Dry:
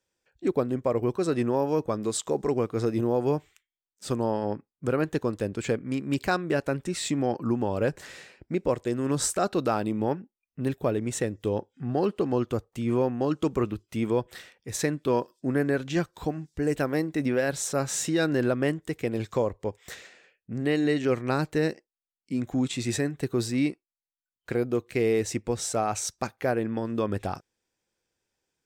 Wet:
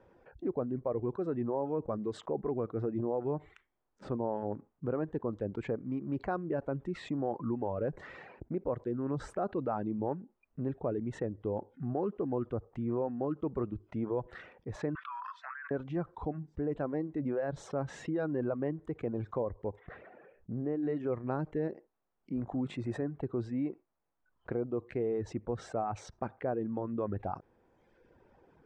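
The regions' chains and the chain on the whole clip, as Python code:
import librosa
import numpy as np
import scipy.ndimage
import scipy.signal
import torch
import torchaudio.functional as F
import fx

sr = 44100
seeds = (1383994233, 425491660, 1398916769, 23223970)

y = fx.chain(x, sr, fx.steep_highpass(hz=1200.0, slope=48),
    fx.spacing_loss(db_at_10k=32),
    fx.env_flatten(amount_pct=100), at=(14.95, 15.71))
y = fx.chain(y, sr, fx.spacing_loss(db_at_10k=42),
    fx.sustainer(db_per_s=120.0), at=(19.79, 20.83))
y = fx.peak_eq(y, sr, hz=9600.0, db=11.5, octaves=0.56, at=(22.35, 23.03), fade=0.02)
y = fx.dmg_buzz(y, sr, base_hz=50.0, harmonics=32, level_db=-43.0, tilt_db=-7, odd_only=False, at=(22.35, 23.03), fade=0.02)
y = fx.hum_notches(y, sr, base_hz=50, count=3, at=(22.35, 23.03), fade=0.02)
y = fx.dereverb_blind(y, sr, rt60_s=0.75)
y = scipy.signal.sosfilt(scipy.signal.cheby1(2, 1.0, 910.0, 'lowpass', fs=sr, output='sos'), y)
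y = fx.env_flatten(y, sr, amount_pct=50)
y = y * librosa.db_to_amplitude(-8.5)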